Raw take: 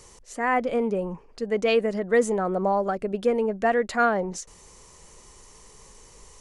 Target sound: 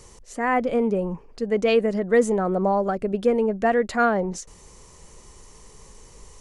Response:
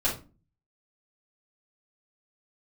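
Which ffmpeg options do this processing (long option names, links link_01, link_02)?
-af "lowshelf=frequency=390:gain=5.5"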